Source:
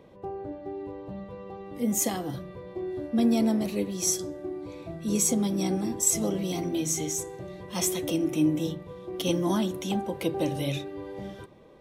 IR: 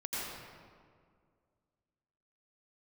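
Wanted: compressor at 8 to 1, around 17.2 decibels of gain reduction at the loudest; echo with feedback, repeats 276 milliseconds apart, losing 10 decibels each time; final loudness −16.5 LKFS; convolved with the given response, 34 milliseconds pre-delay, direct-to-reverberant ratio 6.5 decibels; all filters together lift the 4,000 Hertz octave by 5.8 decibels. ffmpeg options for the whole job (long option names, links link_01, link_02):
-filter_complex "[0:a]equalizer=frequency=4000:width_type=o:gain=8,acompressor=threshold=-36dB:ratio=8,aecho=1:1:276|552|828|1104:0.316|0.101|0.0324|0.0104,asplit=2[link_01][link_02];[1:a]atrim=start_sample=2205,adelay=34[link_03];[link_02][link_03]afir=irnorm=-1:irlink=0,volume=-10.5dB[link_04];[link_01][link_04]amix=inputs=2:normalize=0,volume=21.5dB"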